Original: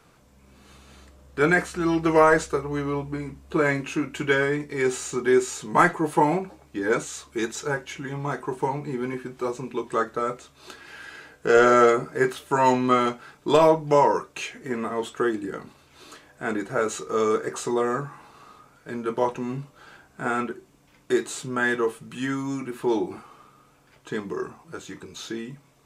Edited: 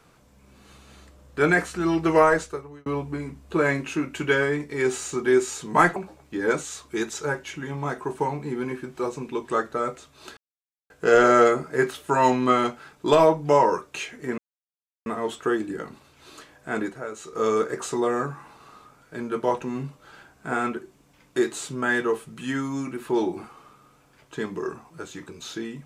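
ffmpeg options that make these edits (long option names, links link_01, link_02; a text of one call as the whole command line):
ffmpeg -i in.wav -filter_complex "[0:a]asplit=8[link_01][link_02][link_03][link_04][link_05][link_06][link_07][link_08];[link_01]atrim=end=2.86,asetpts=PTS-STARTPTS,afade=type=out:start_time=2.18:duration=0.68[link_09];[link_02]atrim=start=2.86:end=5.962,asetpts=PTS-STARTPTS,afade=type=in:duration=0.004:curve=hsin[link_10];[link_03]atrim=start=6.378:end=10.79,asetpts=PTS-STARTPTS,afade=type=out:start_time=4.408:duration=0.004:curve=hsin[link_11];[link_04]atrim=start=10.79:end=11.32,asetpts=PTS-STARTPTS,volume=0[link_12];[link_05]atrim=start=11.32:end=14.8,asetpts=PTS-STARTPTS,afade=type=in:duration=0.004:curve=hsin,afade=type=out:start_time=3.476:duration=0.004:curve=hsin,apad=pad_dur=0.68[link_13];[link_06]atrim=start=14.8:end=16.83,asetpts=PTS-STARTPTS,afade=type=in:duration=0.004:curve=hsin,afade=type=out:start_time=1.79:duration=0.24:curve=qua:silence=0.298538[link_14];[link_07]atrim=start=16.83:end=16.88,asetpts=PTS-STARTPTS,volume=-10.5dB[link_15];[link_08]atrim=start=16.88,asetpts=PTS-STARTPTS,afade=type=in:duration=0.24:curve=qua:silence=0.298538[link_16];[link_09][link_10]concat=n=2:v=0:a=1[link_17];[link_11][link_12][link_13][link_14][link_15][link_16]concat=n=6:v=0:a=1[link_18];[link_17][link_18]acrossfade=duration=0.004:curve1=hsin:curve2=hsin" out.wav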